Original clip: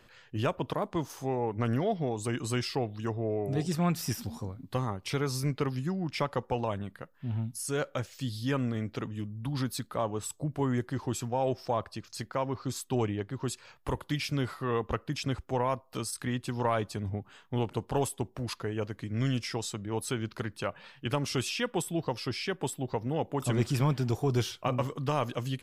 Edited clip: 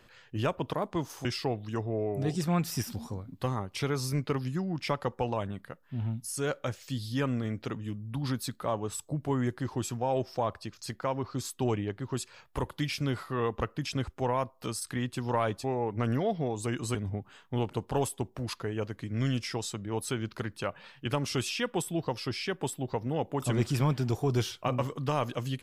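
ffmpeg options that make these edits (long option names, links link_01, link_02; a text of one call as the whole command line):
ffmpeg -i in.wav -filter_complex "[0:a]asplit=4[link_01][link_02][link_03][link_04];[link_01]atrim=end=1.252[link_05];[link_02]atrim=start=2.558:end=16.952[link_06];[link_03]atrim=start=1.248:end=2.562[link_07];[link_04]atrim=start=16.948[link_08];[link_05][link_06]acrossfade=duration=0.004:curve1=hsin:curve2=hsin[link_09];[link_09][link_07]acrossfade=duration=0.004:curve1=hsin:curve2=hsin[link_10];[link_10][link_08]acrossfade=duration=0.004:curve1=hsin:curve2=hsin" out.wav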